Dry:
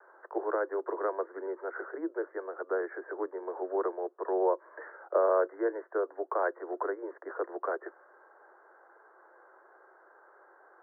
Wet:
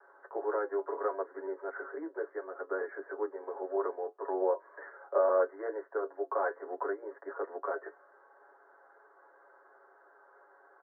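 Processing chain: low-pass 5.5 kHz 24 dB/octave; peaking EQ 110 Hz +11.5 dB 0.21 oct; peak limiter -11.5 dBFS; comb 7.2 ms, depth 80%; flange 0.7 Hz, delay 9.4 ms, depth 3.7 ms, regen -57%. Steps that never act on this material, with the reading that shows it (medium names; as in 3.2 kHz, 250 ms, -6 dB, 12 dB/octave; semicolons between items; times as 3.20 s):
low-pass 5.5 kHz: input has nothing above 1.8 kHz; peaking EQ 110 Hz: input has nothing below 270 Hz; peak limiter -11.5 dBFS: peak at its input -14.5 dBFS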